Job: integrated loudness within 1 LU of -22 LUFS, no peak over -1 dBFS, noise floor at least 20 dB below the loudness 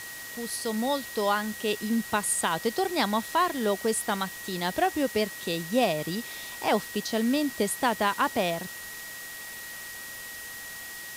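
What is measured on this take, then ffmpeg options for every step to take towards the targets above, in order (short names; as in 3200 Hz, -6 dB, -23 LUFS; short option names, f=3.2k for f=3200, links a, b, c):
steady tone 1900 Hz; tone level -41 dBFS; noise floor -41 dBFS; noise floor target -49 dBFS; loudness -28.5 LUFS; peak -12.0 dBFS; loudness target -22.0 LUFS
-> -af "bandreject=f=1.9k:w=30"
-af "afftdn=nr=8:nf=-41"
-af "volume=6.5dB"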